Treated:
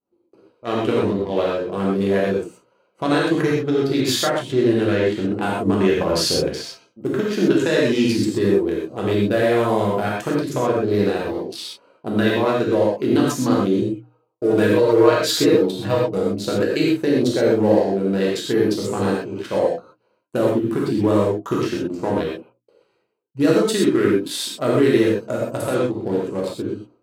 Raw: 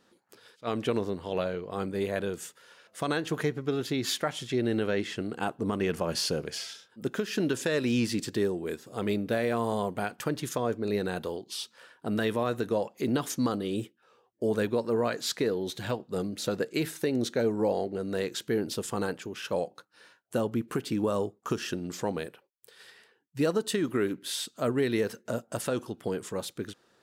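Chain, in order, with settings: local Wiener filter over 25 samples; expander -56 dBFS; hum notches 60/120/180/240/300 Hz; 13.81–16.18 s: comb 6.4 ms, depth 75%; gated-style reverb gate 150 ms flat, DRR -4.5 dB; trim +6 dB

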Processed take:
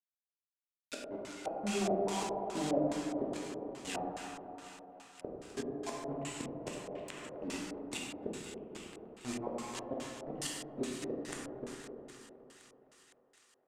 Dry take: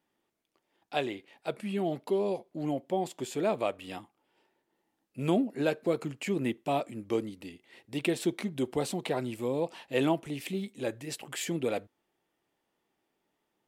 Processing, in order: random holes in the spectrogram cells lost 27%; Bessel high-pass 180 Hz, order 6; compression 3:1, threshold -43 dBFS, peak gain reduction 15 dB; inverted gate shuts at -34 dBFS, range -26 dB; bit crusher 8-bit; on a send: thinning echo 256 ms, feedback 81%, high-pass 350 Hz, level -12 dB; on the sum: plate-style reverb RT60 2.9 s, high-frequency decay 0.5×, pre-delay 0 ms, DRR -4.5 dB; LFO low-pass square 2.4 Hz 620–7700 Hz; 6.95–7.48 s: three bands compressed up and down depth 100%; trim +4.5 dB

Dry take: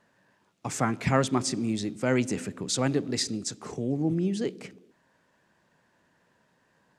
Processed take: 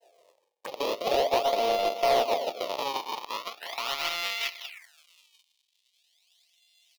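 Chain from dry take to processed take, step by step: sorted samples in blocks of 64 samples; in parallel at +2.5 dB: compression, threshold -33 dBFS, peak gain reduction 15 dB; on the sum: echo from a far wall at 160 m, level -29 dB; decimation with a swept rate 37×, swing 160% 0.41 Hz; expander -56 dBFS; touch-sensitive phaser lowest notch 230 Hz, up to 1.6 kHz, full sweep at -28 dBFS; high-pass sweep 570 Hz -> 3.4 kHz, 2.42–5.56 s; overdrive pedal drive 18 dB, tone 7.1 kHz, clips at -5.5 dBFS; bass shelf 71 Hz +10 dB; trim -7.5 dB

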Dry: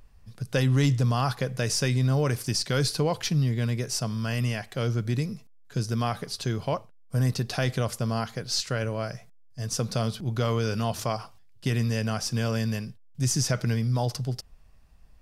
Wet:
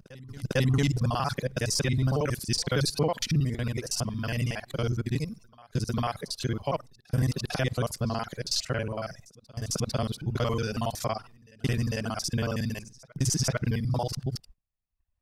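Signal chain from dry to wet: time reversed locally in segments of 46 ms; gate -47 dBFS, range -22 dB; reverse echo 450 ms -22 dB; reverb removal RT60 0.81 s

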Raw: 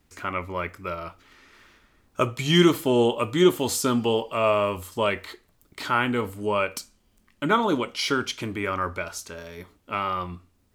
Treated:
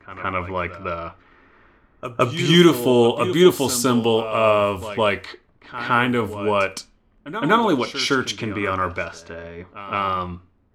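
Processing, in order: level-controlled noise filter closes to 1.3 kHz, open at -22 dBFS; pre-echo 163 ms -12.5 dB; trim +4.5 dB

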